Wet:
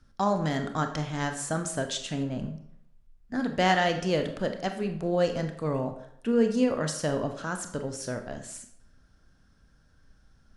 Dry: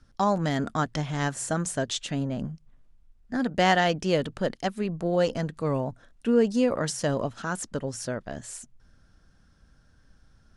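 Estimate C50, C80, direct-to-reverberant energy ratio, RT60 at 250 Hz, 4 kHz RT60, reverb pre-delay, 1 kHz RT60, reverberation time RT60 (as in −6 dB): 9.0 dB, 12.5 dB, 6.0 dB, 0.65 s, 0.50 s, 25 ms, 0.70 s, 0.70 s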